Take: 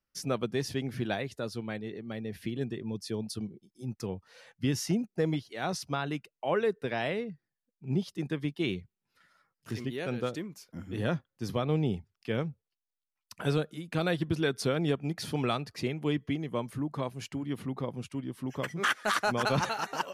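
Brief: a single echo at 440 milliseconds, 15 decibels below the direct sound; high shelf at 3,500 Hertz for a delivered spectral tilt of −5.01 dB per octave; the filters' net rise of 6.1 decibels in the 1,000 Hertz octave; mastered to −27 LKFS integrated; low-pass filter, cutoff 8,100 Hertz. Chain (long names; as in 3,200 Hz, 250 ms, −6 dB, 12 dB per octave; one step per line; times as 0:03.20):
low-pass filter 8,100 Hz
parametric band 1,000 Hz +7.5 dB
high-shelf EQ 3,500 Hz +5.5 dB
single-tap delay 440 ms −15 dB
level +4 dB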